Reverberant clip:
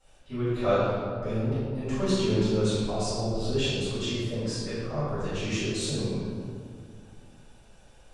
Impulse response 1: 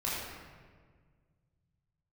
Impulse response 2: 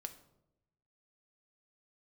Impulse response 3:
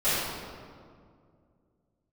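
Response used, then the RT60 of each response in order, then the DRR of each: 3; 1.7, 0.85, 2.2 seconds; −7.5, 7.0, −17.0 decibels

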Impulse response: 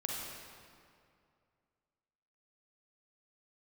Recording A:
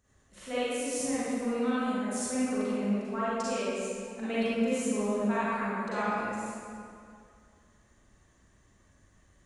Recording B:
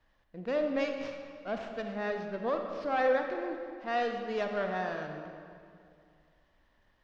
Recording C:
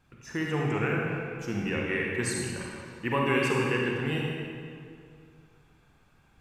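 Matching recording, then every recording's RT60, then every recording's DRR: C; 2.4, 2.4, 2.4 seconds; −11.5, 4.0, −2.5 decibels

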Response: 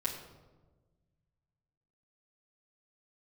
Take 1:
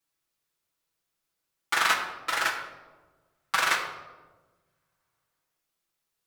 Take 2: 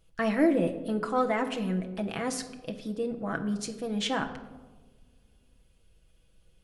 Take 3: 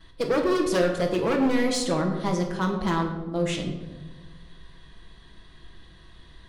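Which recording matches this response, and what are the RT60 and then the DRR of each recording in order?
1; 1.3, 1.3, 1.3 seconds; −5.5, 3.5, −10.5 decibels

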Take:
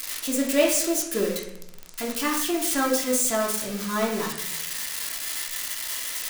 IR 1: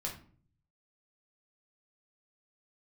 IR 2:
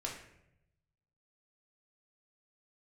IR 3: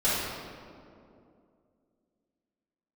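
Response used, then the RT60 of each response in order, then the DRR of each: 2; 0.45, 0.80, 2.5 seconds; −1.5, −3.0, −12.0 decibels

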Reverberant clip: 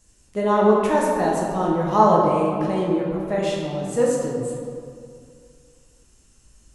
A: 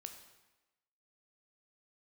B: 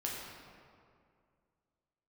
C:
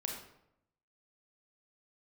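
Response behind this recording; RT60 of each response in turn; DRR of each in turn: B; 1.1, 2.3, 0.80 seconds; 5.5, −4.0, 0.0 decibels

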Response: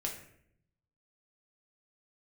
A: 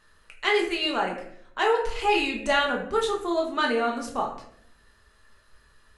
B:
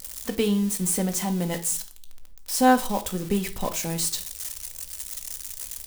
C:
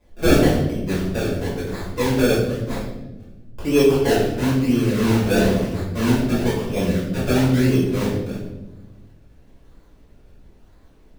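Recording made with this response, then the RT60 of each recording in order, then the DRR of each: A; 0.70, 0.40, 1.1 seconds; −1.0, 6.0, −10.5 decibels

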